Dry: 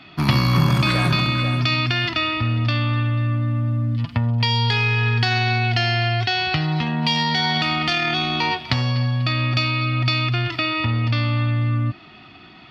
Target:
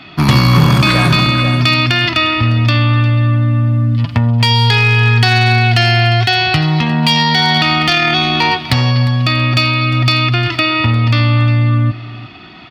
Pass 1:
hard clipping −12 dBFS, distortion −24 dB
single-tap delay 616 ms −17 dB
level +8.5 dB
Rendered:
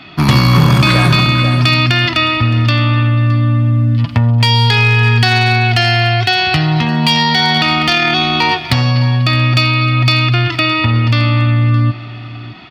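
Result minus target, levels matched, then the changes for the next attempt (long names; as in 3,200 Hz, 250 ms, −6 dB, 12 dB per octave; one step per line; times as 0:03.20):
echo 263 ms late
change: single-tap delay 353 ms −17 dB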